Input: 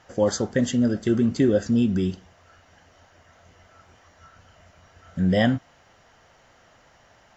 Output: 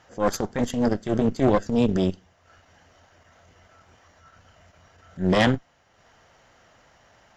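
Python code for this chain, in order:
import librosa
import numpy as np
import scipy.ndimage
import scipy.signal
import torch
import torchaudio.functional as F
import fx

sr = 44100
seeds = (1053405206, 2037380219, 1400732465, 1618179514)

y = fx.transient(x, sr, attack_db=-10, sustain_db=-6)
y = fx.cheby_harmonics(y, sr, harmonics=(4,), levels_db=(-8,), full_scale_db=-10.0)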